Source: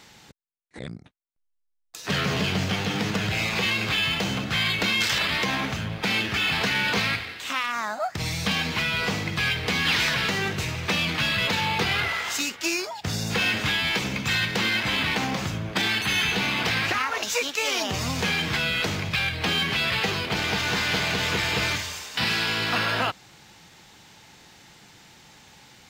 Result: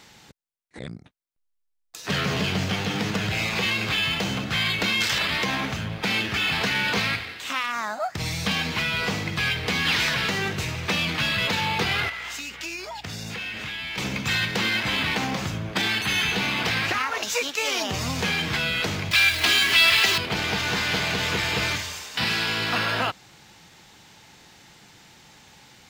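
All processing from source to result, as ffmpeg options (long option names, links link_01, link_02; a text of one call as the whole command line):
ffmpeg -i in.wav -filter_complex "[0:a]asettb=1/sr,asplit=3[link_01][link_02][link_03];[link_01]atrim=end=12.094[link_04];[link_02]atrim=start=12.09:end=13.98,asetpts=PTS-STARTPTS,afade=type=in:duration=0.004:curve=qsin,afade=type=out:start_time=1.886:duration=0.004:curve=qsin,equalizer=frequency=2400:width_type=o:width=1.2:gain=5.5,acompressor=threshold=-31dB:ratio=5:attack=3.2:release=140:knee=1:detection=peak,aeval=exprs='val(0)+0.00224*(sin(2*PI*60*n/s)+sin(2*PI*2*60*n/s)/2+sin(2*PI*3*60*n/s)/3+sin(2*PI*4*60*n/s)/4+sin(2*PI*5*60*n/s)/5)':channel_layout=same[link_05];[link_03]atrim=start=13.976[link_06];[link_04][link_05]acrossfade=duration=0.004:curve1=hsin:curve2=qsin[link_07];[link_07][link_06]acrossfade=duration=0.004:curve1=qsin:curve2=hsin,asettb=1/sr,asplit=3[link_08][link_09][link_10];[link_08]atrim=end=19.114[link_11];[link_09]atrim=start=19.11:end=20.18,asetpts=PTS-STARTPTS,afade=type=in:duration=0.004:curve=qsin,afade=type=out:start_time=1.066:duration=0.004:curve=qsin,aeval=exprs='val(0)+0.5*0.0237*sgn(val(0))':channel_layout=same,tiltshelf=frequency=1100:gain=-6.5,aecho=1:1:3:0.61,atrim=end_sample=47187[link_12];[link_10]atrim=start=20.176[link_13];[link_11][link_12]acrossfade=duration=0.004:curve1=hsin:curve2=qsin[link_14];[link_14][link_13]acrossfade=duration=0.004:curve1=qsin:curve2=hsin" out.wav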